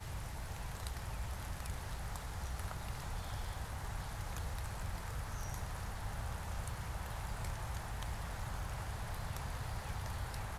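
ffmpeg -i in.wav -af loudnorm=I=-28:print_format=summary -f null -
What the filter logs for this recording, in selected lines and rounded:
Input Integrated:    -43.4 LUFS
Input True Peak:     -22.8 dBTP
Input LRA:             0.8 LU
Input Threshold:     -53.4 LUFS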